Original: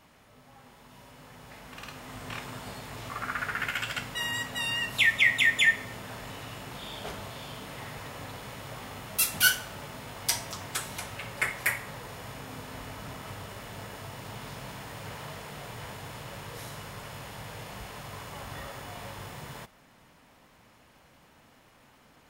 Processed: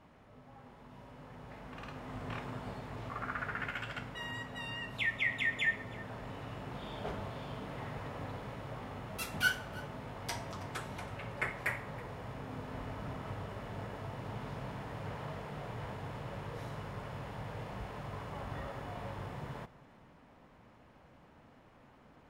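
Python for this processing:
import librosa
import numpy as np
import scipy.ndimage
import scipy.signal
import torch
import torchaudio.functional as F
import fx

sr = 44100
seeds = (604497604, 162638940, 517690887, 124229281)

p1 = fx.lowpass(x, sr, hz=1000.0, slope=6)
p2 = fx.rider(p1, sr, range_db=3, speed_s=2.0)
p3 = p2 + fx.echo_single(p2, sr, ms=323, db=-20.5, dry=0)
y = F.gain(torch.from_numpy(p3), -2.0).numpy()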